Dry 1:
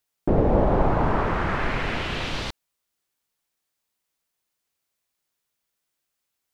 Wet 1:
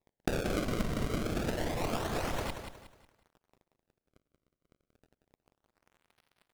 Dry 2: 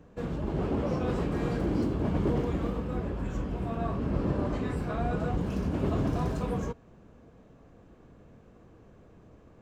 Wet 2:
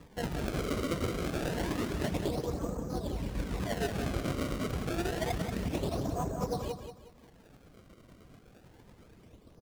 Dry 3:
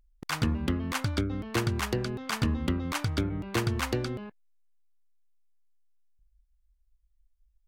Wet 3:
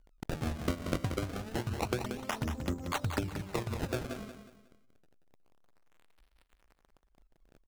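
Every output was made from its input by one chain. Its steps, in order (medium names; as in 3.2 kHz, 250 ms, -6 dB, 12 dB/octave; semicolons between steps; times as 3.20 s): local Wiener filter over 15 samples; reverb removal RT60 0.95 s; dynamic bell 660 Hz, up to +8 dB, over -44 dBFS, Q 1.3; compression 8:1, threshold -30 dBFS; tremolo triangle 8.9 Hz, depth 45%; crackle 210 per s -56 dBFS; decimation with a swept rate 29×, swing 160% 0.28 Hz; on a send: feedback delay 182 ms, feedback 34%, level -8 dB; on the sum: loudspeaker Doppler distortion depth 0.19 ms; trim +2.5 dB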